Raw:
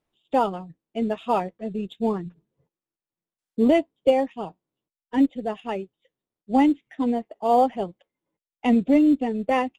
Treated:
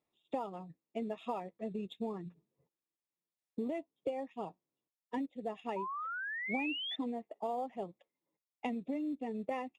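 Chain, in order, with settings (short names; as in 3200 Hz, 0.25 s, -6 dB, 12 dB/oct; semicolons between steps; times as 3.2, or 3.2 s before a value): compressor 12:1, threshold -28 dBFS, peak gain reduction 16 dB; notch comb 1500 Hz; painted sound rise, 5.76–6.96, 930–3600 Hz -34 dBFS; gain -5.5 dB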